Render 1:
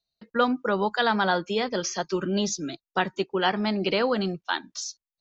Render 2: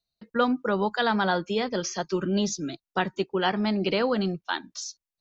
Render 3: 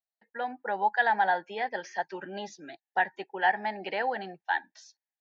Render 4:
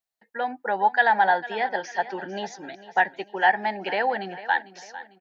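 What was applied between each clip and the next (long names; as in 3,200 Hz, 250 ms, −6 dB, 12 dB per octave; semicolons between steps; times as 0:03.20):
low-shelf EQ 280 Hz +5 dB; level −2 dB
pair of resonant band-passes 1,200 Hz, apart 1.1 octaves; automatic gain control gain up to 7.5 dB
repeating echo 449 ms, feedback 43%, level −16 dB; level +5.5 dB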